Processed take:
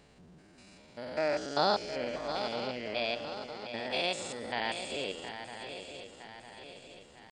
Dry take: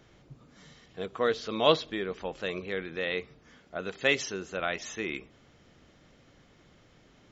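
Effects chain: stepped spectrum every 0.2 s; swung echo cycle 0.958 s, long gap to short 3:1, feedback 49%, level -9.5 dB; pitch shift +4.5 st

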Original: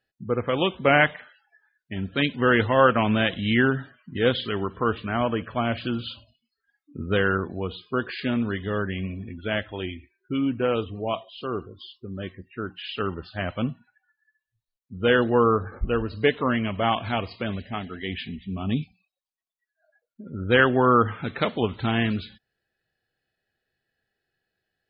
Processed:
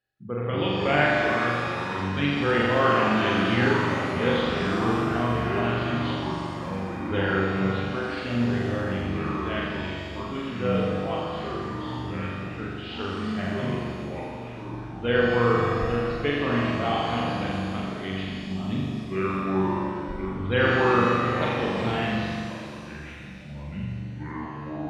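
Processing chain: echoes that change speed 0.158 s, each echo -4 st, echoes 3, each echo -6 dB; flutter echo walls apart 7.2 m, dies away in 1.2 s; shimmer reverb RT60 2.3 s, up +7 st, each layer -8 dB, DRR 3 dB; gain -7.5 dB

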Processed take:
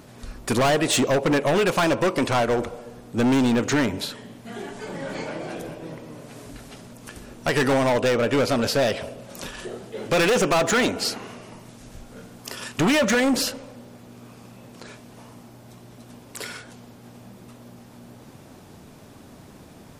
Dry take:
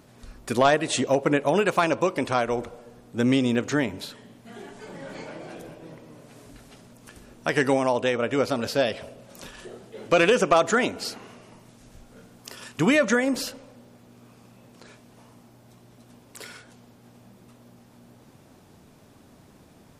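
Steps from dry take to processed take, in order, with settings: overloaded stage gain 24 dB; gain +7 dB

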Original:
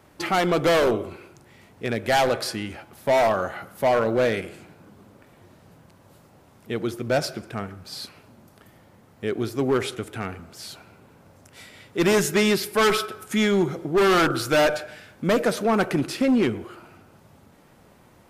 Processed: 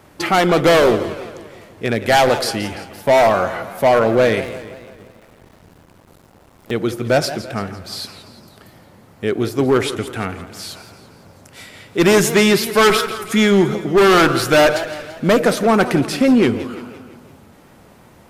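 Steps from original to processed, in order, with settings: 4.44–6.71 cycle switcher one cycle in 2, muted; warbling echo 0.17 s, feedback 53%, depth 155 cents, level -14 dB; gain +7 dB

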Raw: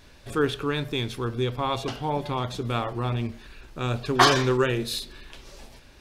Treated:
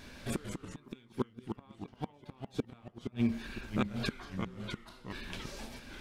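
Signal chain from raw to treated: low shelf 76 Hz -4 dB; 3.05–4 compressor 3:1, threshold -30 dBFS, peak gain reduction 5.5 dB; flipped gate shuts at -21 dBFS, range -36 dB; small resonant body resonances 230/1600/2300 Hz, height 8 dB; echoes that change speed 0.152 s, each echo -2 st, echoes 2, each echo -6 dB; gain +1 dB

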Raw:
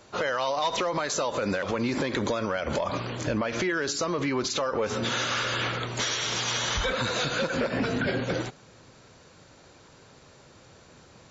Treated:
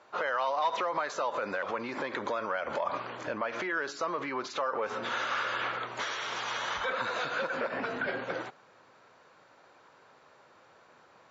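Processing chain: band-pass 1100 Hz, Q 0.97

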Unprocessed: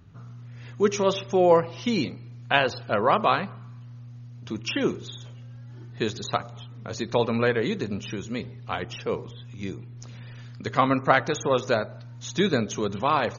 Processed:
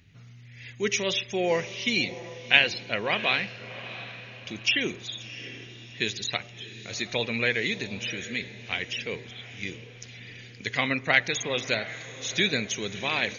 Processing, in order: resonant high shelf 1600 Hz +9.5 dB, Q 3; on a send: diffused feedback echo 0.706 s, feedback 44%, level -14 dB; on the sum: gain -6.5 dB

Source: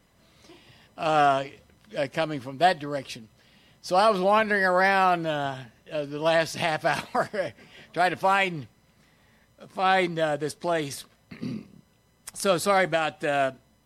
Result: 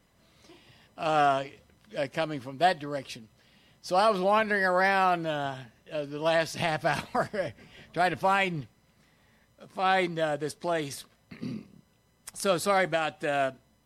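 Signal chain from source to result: 6.59–8.61 low shelf 150 Hz +8.5 dB; gain -3 dB

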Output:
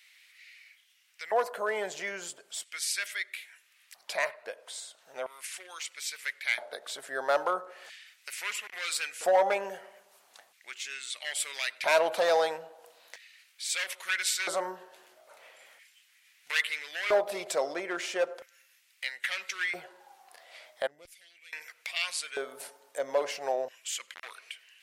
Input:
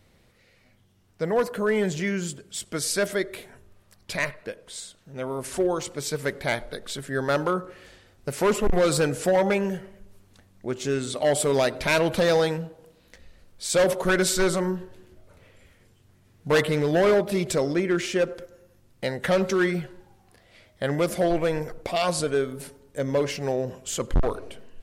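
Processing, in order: LFO high-pass square 0.38 Hz 700–2200 Hz; 20.87–21.53 passive tone stack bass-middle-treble 10-0-1; mismatched tape noise reduction encoder only; gain -5 dB

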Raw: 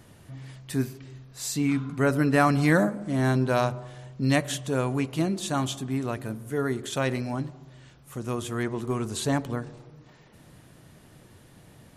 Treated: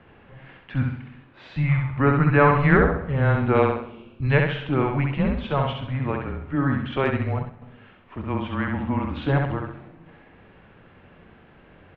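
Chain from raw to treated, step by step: mistuned SSB -140 Hz 220–3000 Hz; 3.75–4.22 spectral delete 420–2200 Hz; on a send: feedback echo 66 ms, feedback 40%, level -3.5 dB; 7.05–7.62 on the sum: transient shaper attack -6 dB, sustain -10 dB; warbling echo 0.104 s, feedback 56%, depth 169 cents, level -22.5 dB; gain +4.5 dB

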